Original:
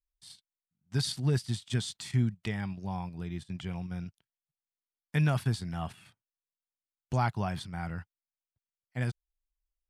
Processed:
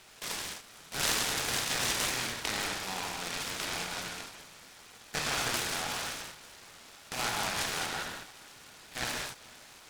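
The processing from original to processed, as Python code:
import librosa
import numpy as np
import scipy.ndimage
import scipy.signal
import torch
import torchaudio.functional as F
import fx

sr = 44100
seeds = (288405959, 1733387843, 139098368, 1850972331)

y = fx.bin_compress(x, sr, power=0.4)
y = fx.bandpass_q(y, sr, hz=3200.0, q=1.4)
y = fx.echo_feedback(y, sr, ms=448, feedback_pct=56, wet_db=-22.0)
y = fx.rev_gated(y, sr, seeds[0], gate_ms=240, shape='flat', drr_db=-1.5)
y = fx.noise_mod_delay(y, sr, seeds[1], noise_hz=1700.0, depth_ms=0.073)
y = y * librosa.db_to_amplitude(3.5)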